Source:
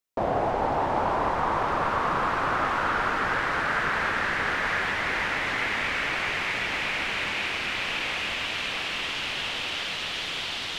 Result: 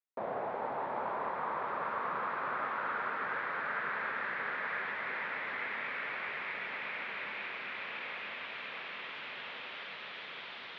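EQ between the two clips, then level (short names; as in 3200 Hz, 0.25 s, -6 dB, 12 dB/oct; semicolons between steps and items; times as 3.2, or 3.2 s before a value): speaker cabinet 240–3200 Hz, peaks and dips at 310 Hz -9 dB, 750 Hz -4 dB, 2900 Hz -7 dB; -9.0 dB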